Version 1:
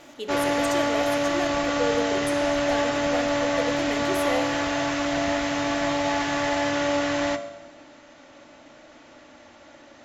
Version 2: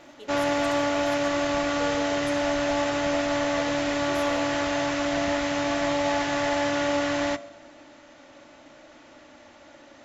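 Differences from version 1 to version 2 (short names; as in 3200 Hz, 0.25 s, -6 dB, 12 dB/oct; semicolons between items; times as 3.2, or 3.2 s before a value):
speech -11.5 dB; background: send -8.0 dB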